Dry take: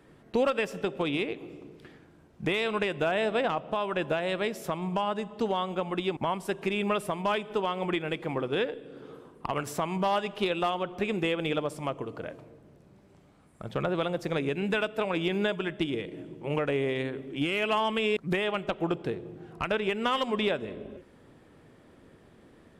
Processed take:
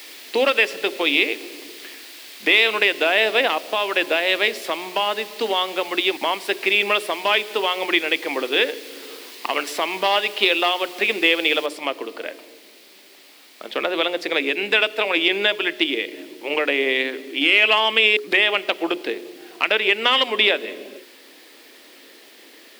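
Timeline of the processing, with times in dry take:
11.66 noise floor step -51 dB -60 dB
whole clip: steep high-pass 270 Hz 36 dB/oct; band shelf 3000 Hz +10 dB; notches 60/120/180/240/300/360/420 Hz; gain +6.5 dB

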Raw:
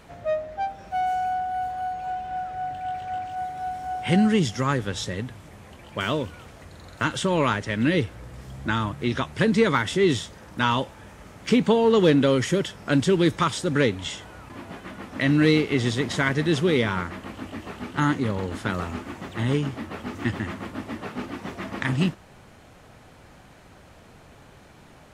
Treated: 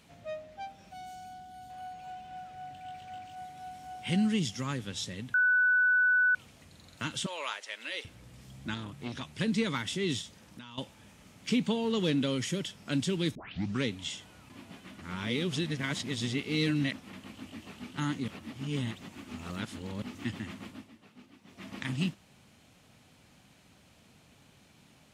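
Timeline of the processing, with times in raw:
0.93–1.7 spectral gain 430–3000 Hz -7 dB
5.34–6.35 bleep 1490 Hz -8 dBFS
7.26–8.05 HPF 540 Hz 24 dB/oct
8.74–9.4 core saturation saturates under 710 Hz
10.21–10.78 compressor 16:1, threshold -33 dBFS
13.35 tape start 0.48 s
14.99–17.13 reverse
18.28–20.02 reverse
20.68–21.7 dip -13 dB, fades 0.23 s
whole clip: HPF 200 Hz 6 dB/oct; band shelf 800 Hz -9 dB 2.8 oct; gain -4.5 dB

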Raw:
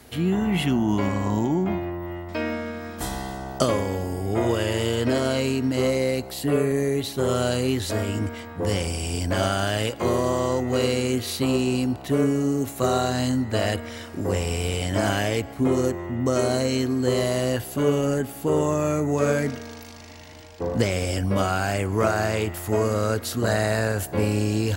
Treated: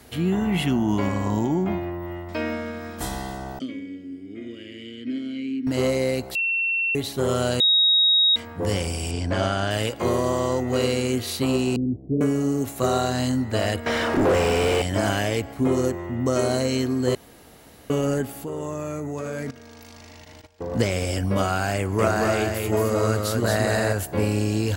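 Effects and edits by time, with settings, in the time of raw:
3.59–5.67 vowel filter i
6.35–6.95 bleep 2710 Hz -20.5 dBFS
7.6–8.36 bleep 3780 Hz -14.5 dBFS
9.11–9.71 air absorption 74 m
11.76–12.21 inverse Chebyshev low-pass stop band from 1800 Hz, stop band 70 dB
13.86–14.82 overdrive pedal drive 33 dB, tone 1100 Hz, clips at -10.5 dBFS
17.15–17.9 room tone
18.44–20.73 level quantiser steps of 15 dB
21.76–23.93 echo 0.226 s -3.5 dB

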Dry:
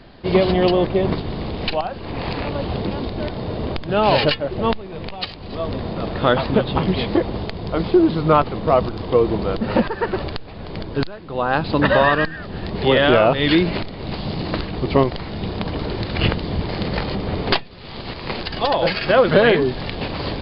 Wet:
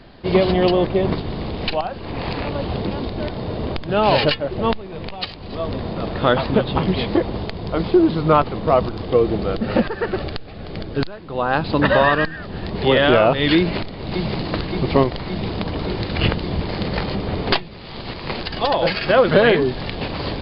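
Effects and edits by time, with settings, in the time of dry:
9.03–11.03 notch 970 Hz, Q 5.6
13.58–14.49 echo throw 0.57 s, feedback 75%, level -5.5 dB

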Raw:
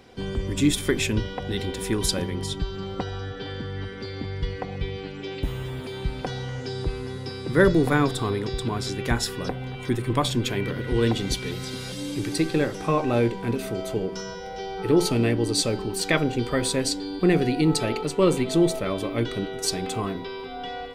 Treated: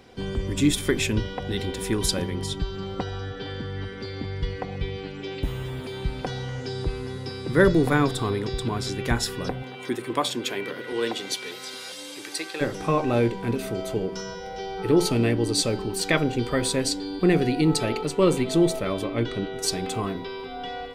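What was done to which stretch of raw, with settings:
9.62–12.6 HPF 240 Hz -> 770 Hz
19.04–19.56 air absorption 55 m

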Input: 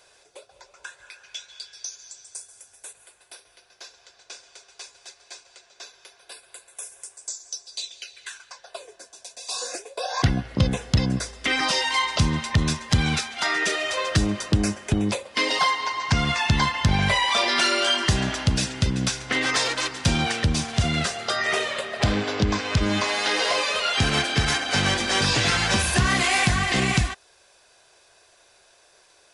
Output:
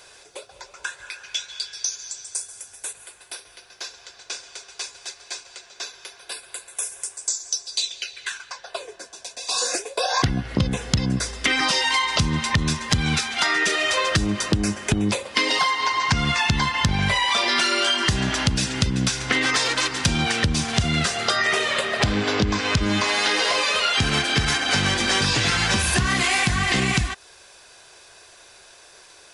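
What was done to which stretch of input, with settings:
7.91–9.56 high shelf 8400 Hz -> 6000 Hz -9 dB
whole clip: bell 620 Hz -4 dB 0.76 oct; compressor, threshold -27 dBFS; gain +9 dB

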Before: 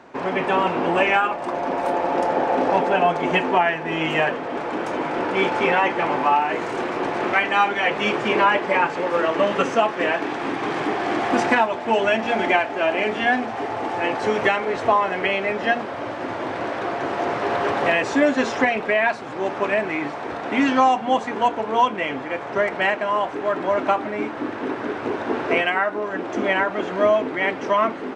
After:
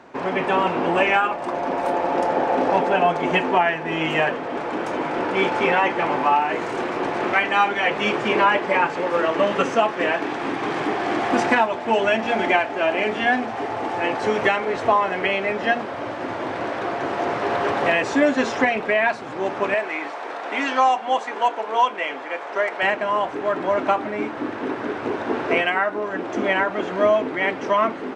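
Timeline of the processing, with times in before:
19.74–22.83 HPF 470 Hz

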